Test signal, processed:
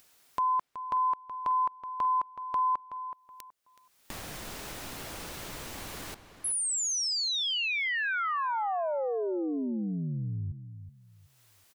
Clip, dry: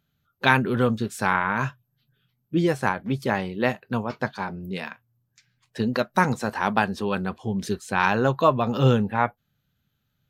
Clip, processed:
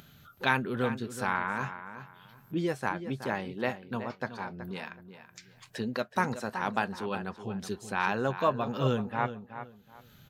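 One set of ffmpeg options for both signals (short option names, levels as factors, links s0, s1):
-filter_complex "[0:a]lowshelf=f=160:g=-5,acompressor=mode=upward:threshold=0.0447:ratio=2.5,asplit=2[s0][s1];[s1]adelay=374,lowpass=f=3400:p=1,volume=0.282,asplit=2[s2][s3];[s3]adelay=374,lowpass=f=3400:p=1,volume=0.25,asplit=2[s4][s5];[s5]adelay=374,lowpass=f=3400:p=1,volume=0.25[s6];[s2][s4][s6]amix=inputs=3:normalize=0[s7];[s0][s7]amix=inputs=2:normalize=0,volume=0.422"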